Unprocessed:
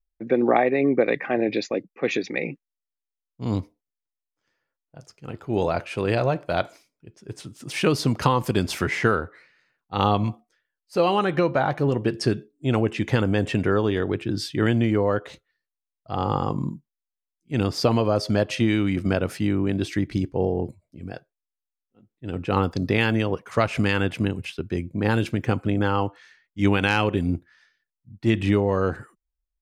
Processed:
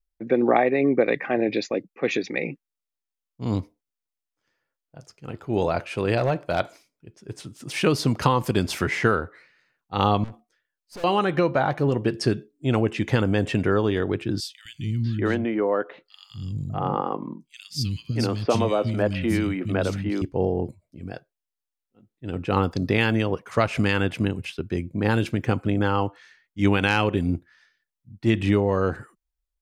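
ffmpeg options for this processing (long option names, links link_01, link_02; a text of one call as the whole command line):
ffmpeg -i in.wav -filter_complex "[0:a]asettb=1/sr,asplit=3[link_01][link_02][link_03];[link_01]atrim=end=6.174[link_04];[link_02]atrim=start=6.17:end=6.6,asetpts=PTS-STARTPTS,afade=type=in:duration=0.004:curve=qsin,afade=type=out:start_time=0.426:duration=0.004:curve=qsin,volume=14.5dB,asoftclip=hard,volume=-14.5dB[link_05];[link_03]atrim=start=6.596[link_06];[link_04][link_05]acrossfade=duration=0.004:curve1=hsin:curve2=qsin[link_07];[link_07][link_06]acrossfade=duration=0.004:curve1=qsin:curve2=hsin,asettb=1/sr,asplit=3[link_08][link_09][link_10];[link_08]atrim=end=10.244[link_11];[link_09]atrim=start=10.24:end=11.04,asetpts=PTS-STARTPTS,afade=type=in:duration=0.004:curve=qsin,afade=type=out:start_time=0.796:duration=0.004:curve=qsin,aeval=exprs='(tanh(63.1*val(0)+0.4)-tanh(0.4))/63.1':channel_layout=same[link_12];[link_10]atrim=start=11.036[link_13];[link_11][link_12]acrossfade=duration=0.004:curve1=hsin:curve2=qsin[link_14];[link_14][link_13]acrossfade=duration=0.004:curve1=qsin:curve2=hsin,asettb=1/sr,asplit=3[link_15][link_16][link_17];[link_15]atrim=end=14.404[link_18];[link_16]atrim=start=14.4:end=20.22,asetpts=PTS-STARTPTS,afade=type=in:duration=0.004:curve=qsin,afade=type=out:start_time=5.816:duration=0.004:curve=qsin,acrossover=split=210|2900[link_19][link_20][link_21];[link_19]adelay=250[link_22];[link_20]adelay=640[link_23];[link_22][link_23][link_21]amix=inputs=3:normalize=0,atrim=end_sample=256662[link_24];[link_17]atrim=start=20.216[link_25];[link_18][link_24]acrossfade=duration=0.004:curve1=hsin:curve2=qsin[link_26];[link_26][link_25]acrossfade=duration=0.004:curve1=qsin:curve2=hsin" out.wav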